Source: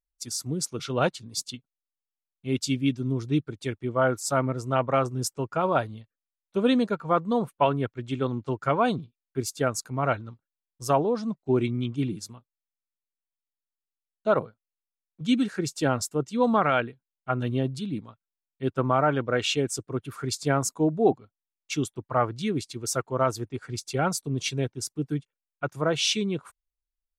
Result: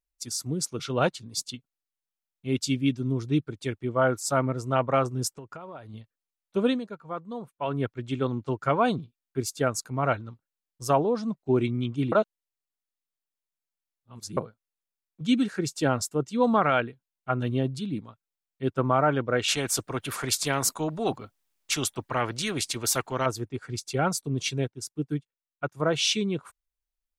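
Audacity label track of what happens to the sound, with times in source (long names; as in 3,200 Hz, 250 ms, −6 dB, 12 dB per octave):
5.300000	5.940000	downward compressor 12 to 1, threshold −37 dBFS
6.630000	7.800000	duck −11.5 dB, fades 0.18 s
12.120000	14.370000	reverse
19.480000	23.260000	every bin compressed towards the loudest bin 2 to 1
24.580000	25.800000	expander for the loud parts, over −42 dBFS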